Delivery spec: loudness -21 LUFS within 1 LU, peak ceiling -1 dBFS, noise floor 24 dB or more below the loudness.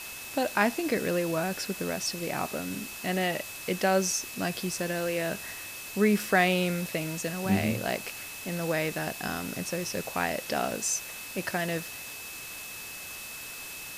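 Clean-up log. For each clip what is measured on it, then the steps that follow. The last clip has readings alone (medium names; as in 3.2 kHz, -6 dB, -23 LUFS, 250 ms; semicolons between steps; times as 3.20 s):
steady tone 2.6 kHz; tone level -43 dBFS; noise floor -41 dBFS; noise floor target -54 dBFS; loudness -30.0 LUFS; peak level -8.5 dBFS; loudness target -21.0 LUFS
-> band-stop 2.6 kHz, Q 30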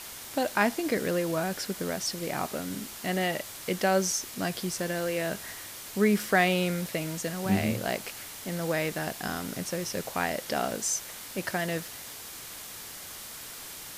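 steady tone not found; noise floor -43 dBFS; noise floor target -55 dBFS
-> noise reduction 12 dB, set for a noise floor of -43 dBFS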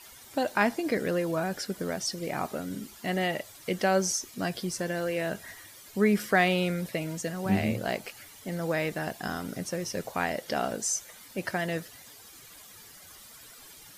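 noise floor -51 dBFS; noise floor target -54 dBFS
-> noise reduction 6 dB, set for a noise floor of -51 dBFS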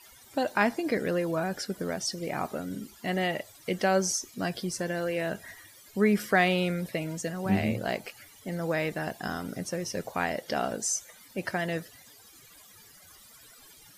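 noise floor -54 dBFS; loudness -30.0 LUFS; peak level -9.0 dBFS; loudness target -21.0 LUFS
-> trim +9 dB; peak limiter -1 dBFS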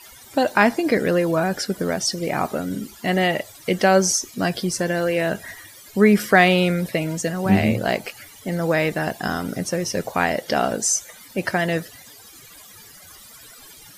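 loudness -21.0 LUFS; peak level -1.0 dBFS; noise floor -45 dBFS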